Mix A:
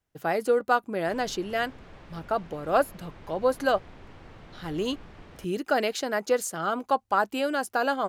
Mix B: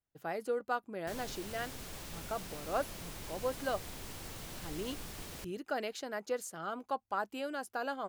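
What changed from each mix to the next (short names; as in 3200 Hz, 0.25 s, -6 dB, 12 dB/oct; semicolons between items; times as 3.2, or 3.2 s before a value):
speech -11.5 dB; background: remove LPF 2100 Hz 12 dB/oct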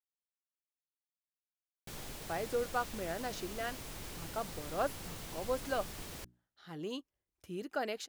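speech: entry +2.05 s; background: entry +0.80 s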